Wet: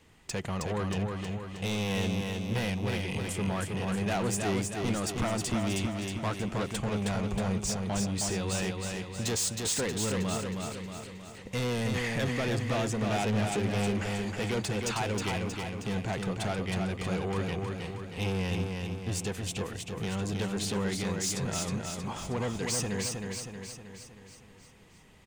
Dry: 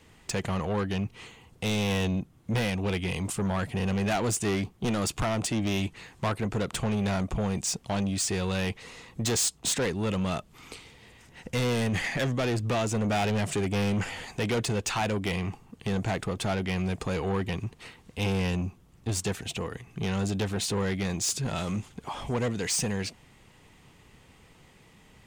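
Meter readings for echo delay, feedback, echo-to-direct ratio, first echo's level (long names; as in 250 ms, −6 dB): 316 ms, 55%, −2.5 dB, −4.0 dB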